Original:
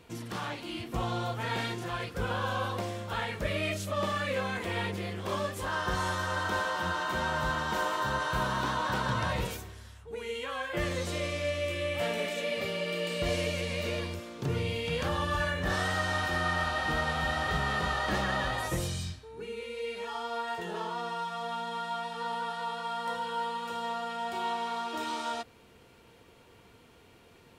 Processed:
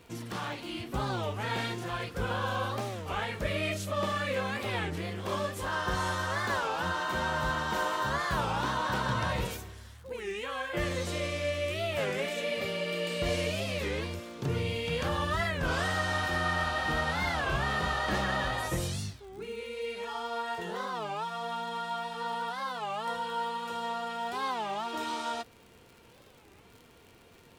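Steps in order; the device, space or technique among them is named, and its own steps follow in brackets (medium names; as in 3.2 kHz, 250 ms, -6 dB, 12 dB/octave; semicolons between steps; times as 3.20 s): warped LP (warped record 33 1/3 rpm, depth 250 cents; crackle 96 per s -45 dBFS; pink noise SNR 40 dB)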